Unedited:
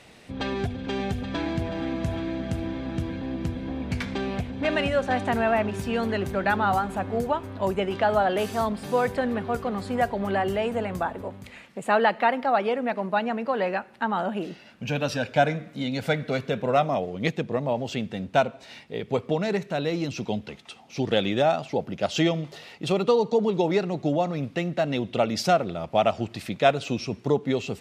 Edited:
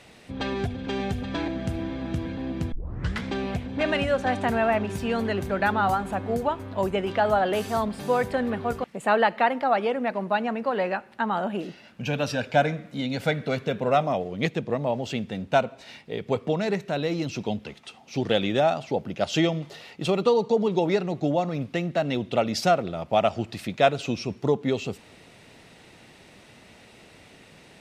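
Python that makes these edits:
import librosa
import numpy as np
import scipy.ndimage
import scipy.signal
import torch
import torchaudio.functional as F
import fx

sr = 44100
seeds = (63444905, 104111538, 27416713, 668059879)

y = fx.edit(x, sr, fx.cut(start_s=1.48, length_s=0.84),
    fx.tape_start(start_s=3.56, length_s=0.51),
    fx.cut(start_s=9.68, length_s=1.98), tone=tone)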